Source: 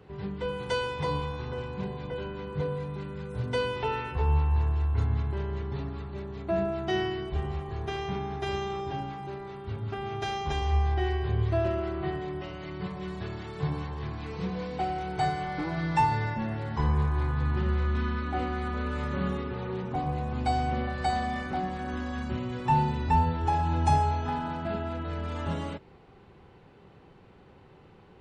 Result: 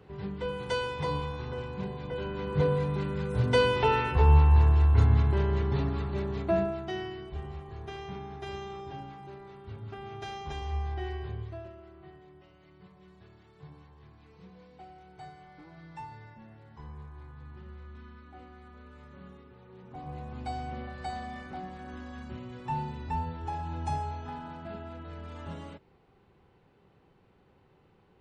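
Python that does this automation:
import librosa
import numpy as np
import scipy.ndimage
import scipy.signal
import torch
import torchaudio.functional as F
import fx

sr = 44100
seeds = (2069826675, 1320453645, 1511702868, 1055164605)

y = fx.gain(x, sr, db=fx.line((2.04, -1.5), (2.64, 5.5), (6.37, 5.5), (6.95, -7.5), (11.24, -7.5), (11.74, -19.5), (19.68, -19.5), (20.15, -9.0)))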